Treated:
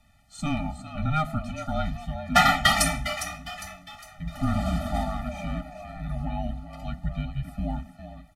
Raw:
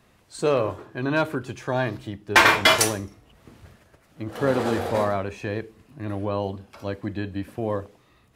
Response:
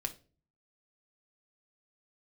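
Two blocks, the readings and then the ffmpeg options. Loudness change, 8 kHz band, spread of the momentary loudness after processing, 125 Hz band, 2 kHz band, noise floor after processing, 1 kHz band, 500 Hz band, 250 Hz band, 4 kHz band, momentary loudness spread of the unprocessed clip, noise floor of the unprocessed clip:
-4.0 dB, -3.0 dB, 18 LU, +1.5 dB, -5.0 dB, -55 dBFS, -1.5 dB, -10.5 dB, -2.0 dB, -3.5 dB, 19 LU, -60 dBFS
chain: -filter_complex "[0:a]asplit=6[s0][s1][s2][s3][s4][s5];[s1]adelay=406,afreqshift=120,volume=0.282[s6];[s2]adelay=812,afreqshift=240,volume=0.124[s7];[s3]adelay=1218,afreqshift=360,volume=0.0543[s8];[s4]adelay=1624,afreqshift=480,volume=0.024[s9];[s5]adelay=2030,afreqshift=600,volume=0.0106[s10];[s0][s6][s7][s8][s9][s10]amix=inputs=6:normalize=0,afreqshift=-160,afftfilt=real='re*eq(mod(floor(b*sr/1024/290),2),0)':imag='im*eq(mod(floor(b*sr/1024/290),2),0)':win_size=1024:overlap=0.75"

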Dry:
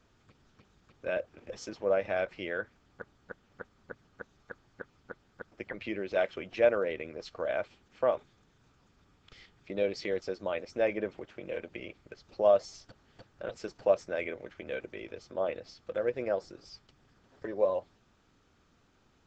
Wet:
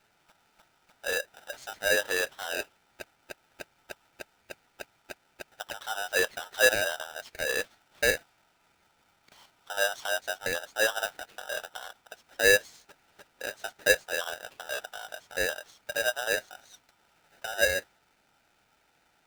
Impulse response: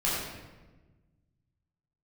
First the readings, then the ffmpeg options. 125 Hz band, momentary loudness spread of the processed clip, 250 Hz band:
-1.0 dB, 23 LU, -6.0 dB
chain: -af "highpass=210,highshelf=f=3000:g=-7.5,aeval=exprs='val(0)*sgn(sin(2*PI*1100*n/s))':c=same,volume=1.33"

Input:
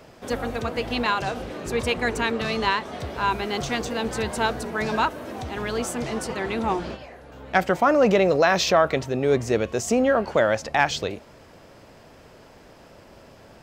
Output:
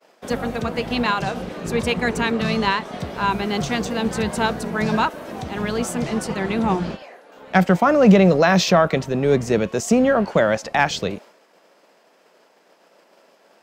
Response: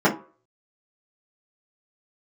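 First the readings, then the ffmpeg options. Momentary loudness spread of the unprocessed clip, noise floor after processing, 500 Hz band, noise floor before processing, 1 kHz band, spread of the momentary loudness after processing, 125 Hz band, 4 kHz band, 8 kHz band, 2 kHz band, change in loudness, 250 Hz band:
12 LU, -57 dBFS, +2.5 dB, -50 dBFS, +2.0 dB, 12 LU, +8.5 dB, +2.0 dB, +2.0 dB, +2.0 dB, +3.5 dB, +7.5 dB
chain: -filter_complex "[0:a]agate=range=0.0224:threshold=0.00794:ratio=3:detection=peak,equalizer=f=180:w=2.2:g=13,acrossover=split=340[s0][s1];[s0]aeval=exprs='sgn(val(0))*max(abs(val(0))-0.0141,0)':c=same[s2];[s2][s1]amix=inputs=2:normalize=0,volume=1.26"

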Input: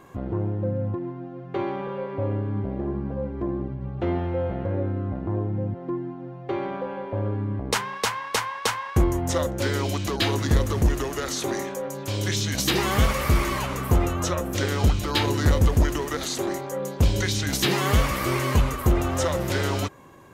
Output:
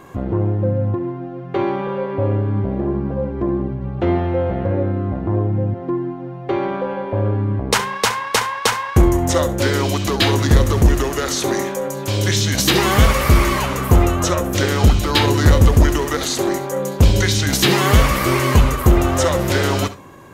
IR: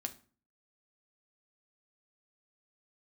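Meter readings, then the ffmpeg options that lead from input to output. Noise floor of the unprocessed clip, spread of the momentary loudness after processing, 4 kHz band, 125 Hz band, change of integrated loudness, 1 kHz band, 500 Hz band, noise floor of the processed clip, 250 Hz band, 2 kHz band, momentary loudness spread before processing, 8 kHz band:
-38 dBFS, 9 LU, +7.5 dB, +7.5 dB, +7.5 dB, +7.5 dB, +8.0 dB, -30 dBFS, +7.5 dB, +7.5 dB, 9 LU, +7.5 dB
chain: -filter_complex "[0:a]asplit=2[s0][s1];[1:a]atrim=start_sample=2205,adelay=66[s2];[s1][s2]afir=irnorm=-1:irlink=0,volume=0.224[s3];[s0][s3]amix=inputs=2:normalize=0,volume=2.37"

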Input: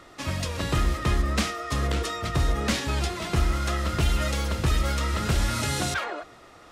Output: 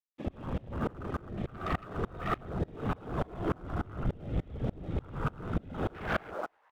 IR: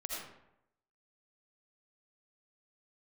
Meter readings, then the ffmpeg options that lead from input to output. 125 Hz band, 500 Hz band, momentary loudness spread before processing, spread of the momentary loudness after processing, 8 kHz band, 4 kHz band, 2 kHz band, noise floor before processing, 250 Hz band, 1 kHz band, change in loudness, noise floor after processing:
-9.5 dB, -5.0 dB, 5 LU, 5 LU, under -30 dB, -21.0 dB, -10.5 dB, -50 dBFS, -5.5 dB, -7.0 dB, -9.5 dB, -68 dBFS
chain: -filter_complex "[0:a]acompressor=threshold=0.0282:ratio=5,aresample=8000,aresample=44100,highpass=f=45:w=0.5412,highpass=f=45:w=1.3066[s0];[1:a]atrim=start_sample=2205,afade=t=out:st=0.33:d=0.01,atrim=end_sample=14994,asetrate=26901,aresample=44100[s1];[s0][s1]afir=irnorm=-1:irlink=0,afftfilt=real='hypot(re,im)*cos(2*PI*random(0))':imag='hypot(re,im)*sin(2*PI*random(1))':win_size=512:overlap=0.75,afwtdn=0.0141,asoftclip=type=tanh:threshold=0.0211,acontrast=55,aeval=exprs='sgn(val(0))*max(abs(val(0))-0.00178,0)':c=same,asplit=5[s2][s3][s4][s5][s6];[s3]adelay=101,afreqshift=130,volume=0.0891[s7];[s4]adelay=202,afreqshift=260,volume=0.049[s8];[s5]adelay=303,afreqshift=390,volume=0.0269[s9];[s6]adelay=404,afreqshift=520,volume=0.0148[s10];[s2][s7][s8][s9][s10]amix=inputs=5:normalize=0,aeval=exprs='val(0)*pow(10,-28*if(lt(mod(-3.4*n/s,1),2*abs(-3.4)/1000),1-mod(-3.4*n/s,1)/(2*abs(-3.4)/1000),(mod(-3.4*n/s,1)-2*abs(-3.4)/1000)/(1-2*abs(-3.4)/1000))/20)':c=same,volume=2.51"

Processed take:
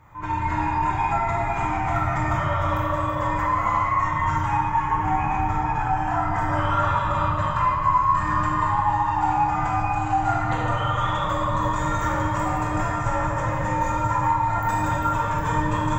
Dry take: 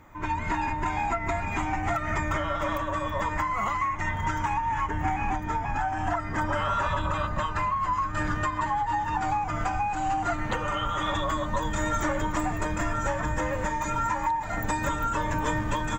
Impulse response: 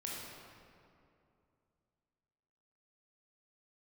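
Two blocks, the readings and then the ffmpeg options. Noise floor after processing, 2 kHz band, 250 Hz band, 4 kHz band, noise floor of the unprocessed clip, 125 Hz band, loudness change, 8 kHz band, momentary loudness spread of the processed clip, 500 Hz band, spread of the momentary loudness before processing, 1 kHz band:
-26 dBFS, +1.5 dB, +3.5 dB, 0.0 dB, -32 dBFS, +7.0 dB, +5.0 dB, no reading, 3 LU, +3.0 dB, 2 LU, +6.0 dB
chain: -filter_complex "[0:a]equalizer=f=125:t=o:w=1:g=9,equalizer=f=250:t=o:w=1:g=-6,equalizer=f=1000:t=o:w=1:g=7[s0];[1:a]atrim=start_sample=2205[s1];[s0][s1]afir=irnorm=-1:irlink=0"

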